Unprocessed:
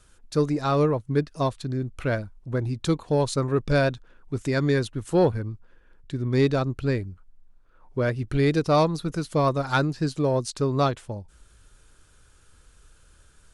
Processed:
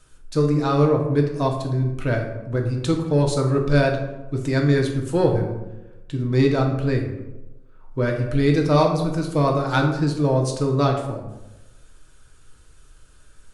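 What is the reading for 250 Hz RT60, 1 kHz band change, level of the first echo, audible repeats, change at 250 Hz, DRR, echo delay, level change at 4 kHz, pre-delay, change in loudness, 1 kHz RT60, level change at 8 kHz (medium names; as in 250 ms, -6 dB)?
1.0 s, +2.5 dB, no echo, no echo, +4.5 dB, 1.0 dB, no echo, +2.0 dB, 3 ms, +3.5 dB, 0.90 s, +1.5 dB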